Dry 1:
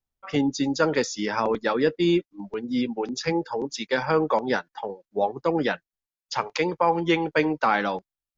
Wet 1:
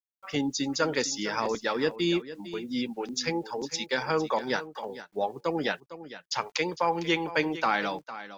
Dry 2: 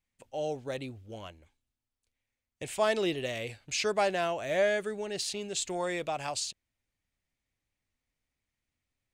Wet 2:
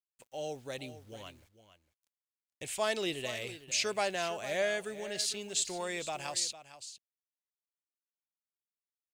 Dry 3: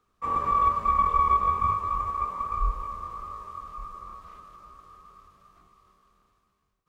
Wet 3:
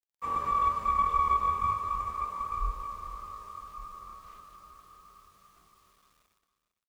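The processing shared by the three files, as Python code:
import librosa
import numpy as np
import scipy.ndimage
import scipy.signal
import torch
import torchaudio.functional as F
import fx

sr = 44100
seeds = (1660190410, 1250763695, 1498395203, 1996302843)

p1 = fx.high_shelf(x, sr, hz=2300.0, db=9.0)
p2 = fx.quant_dither(p1, sr, seeds[0], bits=10, dither='none')
p3 = p2 + fx.echo_single(p2, sr, ms=455, db=-14.0, dry=0)
y = p3 * librosa.db_to_amplitude(-6.0)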